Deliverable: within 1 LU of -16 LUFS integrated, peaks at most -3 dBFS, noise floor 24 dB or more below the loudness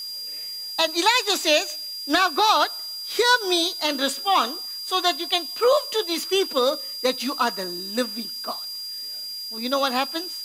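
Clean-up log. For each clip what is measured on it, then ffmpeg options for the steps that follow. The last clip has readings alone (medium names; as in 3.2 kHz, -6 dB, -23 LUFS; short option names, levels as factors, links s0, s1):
steady tone 4.8 kHz; tone level -31 dBFS; noise floor -34 dBFS; noise floor target -47 dBFS; loudness -22.5 LUFS; peak level -5.5 dBFS; loudness target -16.0 LUFS
-> -af "bandreject=f=4800:w=30"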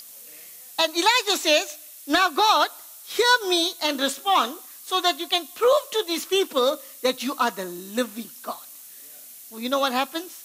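steady tone not found; noise floor -44 dBFS; noise floor target -47 dBFS
-> -af "afftdn=nr=6:nf=-44"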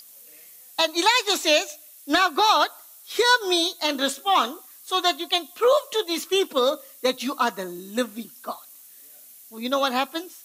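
noise floor -48 dBFS; loudness -22.5 LUFS; peak level -6.0 dBFS; loudness target -16.0 LUFS
-> -af "volume=2.11,alimiter=limit=0.708:level=0:latency=1"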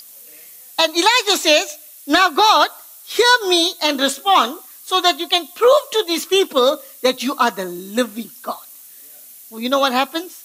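loudness -16.0 LUFS; peak level -3.0 dBFS; noise floor -42 dBFS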